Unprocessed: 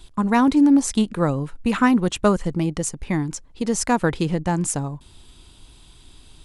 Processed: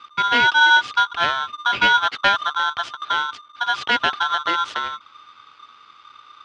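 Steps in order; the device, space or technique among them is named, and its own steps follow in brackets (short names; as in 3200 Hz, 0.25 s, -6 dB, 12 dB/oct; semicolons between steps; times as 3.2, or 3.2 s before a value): ring modulator pedal into a guitar cabinet (polarity switched at an audio rate 1200 Hz; speaker cabinet 80–4300 Hz, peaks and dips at 180 Hz -9 dB, 1400 Hz +6 dB, 3100 Hz +8 dB); gain -2.5 dB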